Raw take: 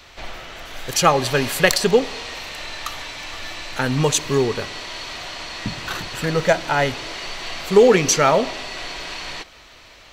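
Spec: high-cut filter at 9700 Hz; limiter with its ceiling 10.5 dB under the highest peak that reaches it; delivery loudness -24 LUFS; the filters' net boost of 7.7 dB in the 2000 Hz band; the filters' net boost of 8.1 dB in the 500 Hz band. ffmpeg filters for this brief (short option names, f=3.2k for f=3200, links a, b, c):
-af "lowpass=9.7k,equalizer=f=500:t=o:g=9,equalizer=f=2k:t=o:g=9,volume=-6dB,alimiter=limit=-10dB:level=0:latency=1"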